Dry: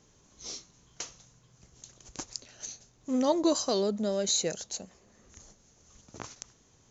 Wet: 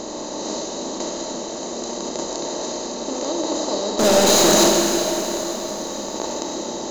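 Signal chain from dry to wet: spectral levelling over time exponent 0.2; bass shelf 69 Hz +8.5 dB; 3.99–4.69 s: waveshaping leveller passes 5; tone controls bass -4 dB, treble -2 dB; hum notches 60/120 Hz; Schroeder reverb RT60 3.5 s, combs from 26 ms, DRR 0 dB; trim -5.5 dB

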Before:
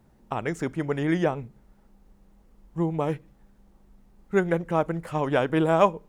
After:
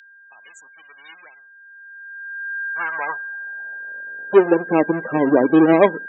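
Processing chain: square wave that keeps the level; in parallel at +2.5 dB: compression, threshold -31 dBFS, peak gain reduction 19 dB; on the sum: loudest bins only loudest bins 32; whistle 1.6 kHz -30 dBFS; high-pass sweep 3.8 kHz -> 290 Hz, 1.49–4.80 s; trim -1 dB

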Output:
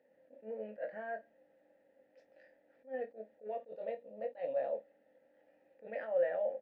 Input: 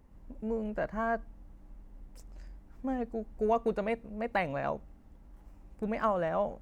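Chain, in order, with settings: 3.68–4.72 s: high-order bell 1.9 kHz -10 dB 1 oct; peak limiter -29 dBFS, peak gain reduction 11.5 dB; vowel filter e; cabinet simulation 240–4900 Hz, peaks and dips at 390 Hz -9 dB, 820 Hz +4 dB, 2.7 kHz -6 dB; early reflections 23 ms -6 dB, 52 ms -15.5 dB; attacks held to a fixed rise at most 250 dB/s; trim +9.5 dB

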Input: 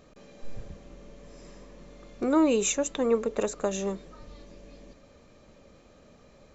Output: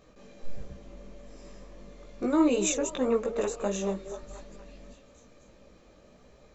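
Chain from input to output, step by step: chorus voices 4, 1.4 Hz, delay 18 ms, depth 3 ms; repeats whose band climbs or falls 238 ms, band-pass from 470 Hz, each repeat 0.7 oct, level -8.5 dB; trim +1.5 dB

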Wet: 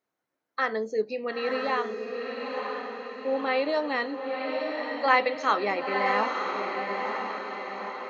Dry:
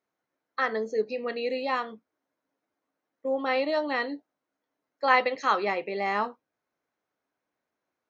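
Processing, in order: 1.67–3.69 s: steep low-pass 4.8 kHz 48 dB/octave; echo that smears into a reverb 959 ms, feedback 54%, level -4 dB

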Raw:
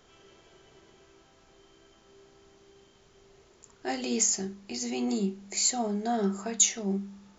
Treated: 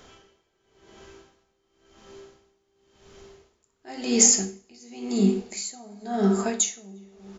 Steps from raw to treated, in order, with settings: speakerphone echo 350 ms, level -19 dB; reverberation RT60 0.90 s, pre-delay 3 ms, DRR 6 dB; logarithmic tremolo 0.94 Hz, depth 25 dB; trim +9 dB

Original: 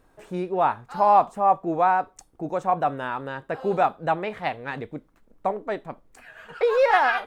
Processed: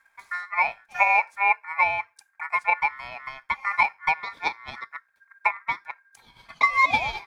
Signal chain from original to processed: static phaser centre 340 Hz, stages 6; transient shaper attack +8 dB, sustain -2 dB; ring modulator 1.6 kHz

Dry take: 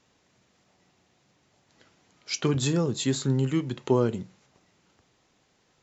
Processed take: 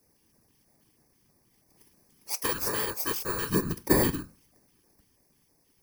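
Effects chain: bit-reversed sample order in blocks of 32 samples; whisper effect; LFO notch square 3.1 Hz 630–3100 Hz; 2.34–3.50 s: resonant low shelf 360 Hz -14 dB, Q 1.5

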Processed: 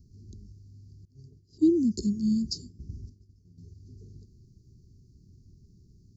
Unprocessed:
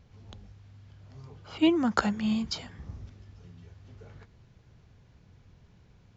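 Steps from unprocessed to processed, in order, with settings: Chebyshev band-stop 390–4600 Hz, order 5; 1.05–3.58 s: expander -42 dBFS; trim +2.5 dB

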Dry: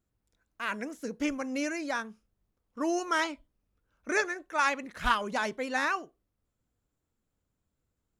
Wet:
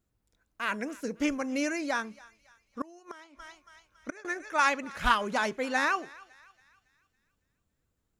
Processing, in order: thinning echo 278 ms, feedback 49%, high-pass 870 Hz, level -20.5 dB; 2.81–4.25 s: inverted gate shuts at -22 dBFS, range -25 dB; trim +2 dB

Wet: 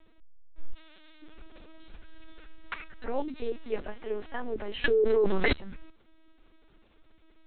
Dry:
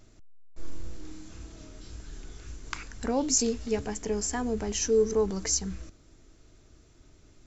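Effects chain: 0.73–1.22 s: tilt EQ +4.5 dB/octave; LPC vocoder at 8 kHz pitch kept; peaking EQ 120 Hz -13.5 dB 2 oct; 4.84–5.53 s: level flattener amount 100%

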